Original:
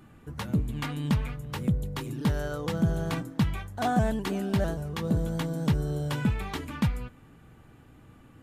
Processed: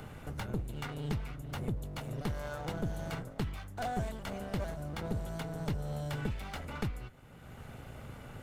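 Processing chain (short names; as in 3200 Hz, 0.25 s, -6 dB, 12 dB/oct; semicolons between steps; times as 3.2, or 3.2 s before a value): minimum comb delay 1.4 ms; three-band squash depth 70%; gain -7.5 dB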